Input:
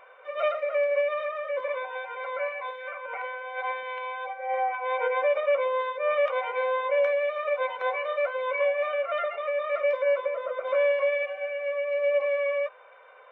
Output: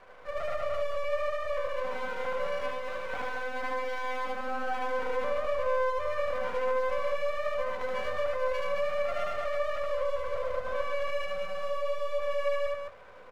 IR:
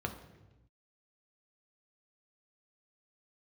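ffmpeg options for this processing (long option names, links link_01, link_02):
-filter_complex "[0:a]aemphasis=mode=reproduction:type=riaa,aeval=exprs='max(val(0),0)':channel_layout=same,alimiter=level_in=2dB:limit=-24dB:level=0:latency=1:release=156,volume=-2dB,aecho=1:1:75.8|215.7:0.891|0.562,asplit=2[link_01][link_02];[1:a]atrim=start_sample=2205,lowpass=2500[link_03];[link_02][link_03]afir=irnorm=-1:irlink=0,volume=-14dB[link_04];[link_01][link_04]amix=inputs=2:normalize=0"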